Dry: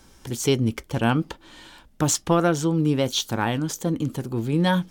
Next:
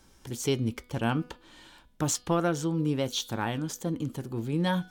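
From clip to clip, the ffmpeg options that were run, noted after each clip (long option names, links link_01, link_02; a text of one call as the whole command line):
ffmpeg -i in.wav -af "bandreject=frequency=246.2:width_type=h:width=4,bandreject=frequency=492.4:width_type=h:width=4,bandreject=frequency=738.6:width_type=h:width=4,bandreject=frequency=984.8:width_type=h:width=4,bandreject=frequency=1231:width_type=h:width=4,bandreject=frequency=1477.2:width_type=h:width=4,bandreject=frequency=1723.4:width_type=h:width=4,bandreject=frequency=1969.6:width_type=h:width=4,bandreject=frequency=2215.8:width_type=h:width=4,bandreject=frequency=2462:width_type=h:width=4,bandreject=frequency=2708.2:width_type=h:width=4,bandreject=frequency=2954.4:width_type=h:width=4,bandreject=frequency=3200.6:width_type=h:width=4,bandreject=frequency=3446.8:width_type=h:width=4,bandreject=frequency=3693:width_type=h:width=4,bandreject=frequency=3939.2:width_type=h:width=4,bandreject=frequency=4185.4:width_type=h:width=4,bandreject=frequency=4431.6:width_type=h:width=4,bandreject=frequency=4677.8:width_type=h:width=4,bandreject=frequency=4924:width_type=h:width=4,volume=-6.5dB" out.wav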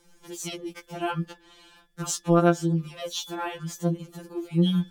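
ffmpeg -i in.wav -af "afftfilt=real='re*2.83*eq(mod(b,8),0)':imag='im*2.83*eq(mod(b,8),0)':win_size=2048:overlap=0.75,volume=2dB" out.wav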